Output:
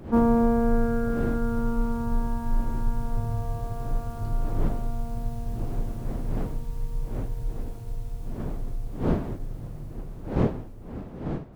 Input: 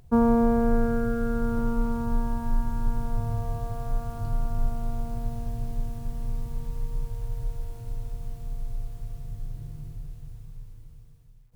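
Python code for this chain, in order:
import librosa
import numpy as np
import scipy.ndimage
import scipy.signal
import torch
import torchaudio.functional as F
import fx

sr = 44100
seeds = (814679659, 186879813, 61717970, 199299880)

y = fx.dmg_wind(x, sr, seeds[0], corner_hz=310.0, level_db=-35.0)
y = fx.attack_slew(y, sr, db_per_s=390.0)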